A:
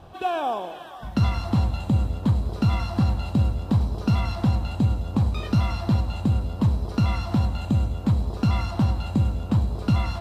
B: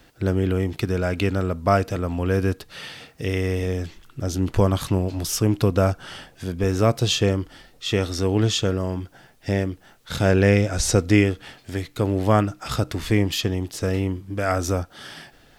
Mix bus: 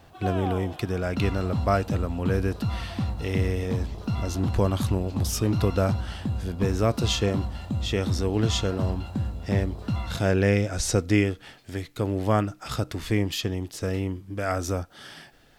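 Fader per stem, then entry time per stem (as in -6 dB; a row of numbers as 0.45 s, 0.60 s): -7.0 dB, -4.5 dB; 0.00 s, 0.00 s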